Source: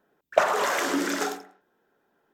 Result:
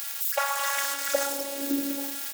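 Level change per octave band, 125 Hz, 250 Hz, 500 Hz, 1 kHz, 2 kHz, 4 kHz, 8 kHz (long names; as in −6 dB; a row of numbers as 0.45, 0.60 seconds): can't be measured, −0.5 dB, −5.0 dB, −3.5 dB, −2.5 dB, +2.0 dB, +5.5 dB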